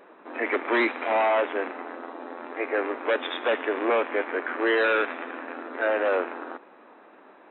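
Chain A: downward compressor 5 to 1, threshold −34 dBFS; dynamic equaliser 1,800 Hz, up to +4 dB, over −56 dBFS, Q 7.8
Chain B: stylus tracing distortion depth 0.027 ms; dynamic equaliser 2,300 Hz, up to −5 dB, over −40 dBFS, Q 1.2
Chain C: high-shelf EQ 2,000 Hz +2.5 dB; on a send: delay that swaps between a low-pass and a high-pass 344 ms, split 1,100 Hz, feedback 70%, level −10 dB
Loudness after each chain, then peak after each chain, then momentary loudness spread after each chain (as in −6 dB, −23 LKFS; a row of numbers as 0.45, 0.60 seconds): −36.5, −27.5, −25.5 LKFS; −22.0, −17.0, −13.5 dBFS; 9, 15, 15 LU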